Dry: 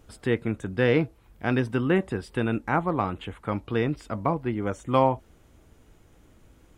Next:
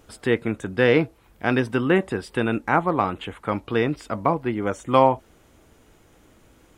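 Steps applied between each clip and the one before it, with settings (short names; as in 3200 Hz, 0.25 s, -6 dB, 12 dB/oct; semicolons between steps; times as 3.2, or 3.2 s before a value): low shelf 170 Hz -9 dB; gain +5.5 dB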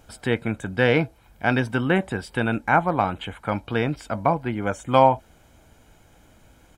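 comb 1.3 ms, depth 44%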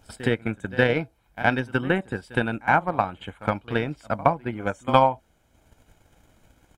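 pre-echo 67 ms -14 dB; transient shaper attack +9 dB, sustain -5 dB; gain -5.5 dB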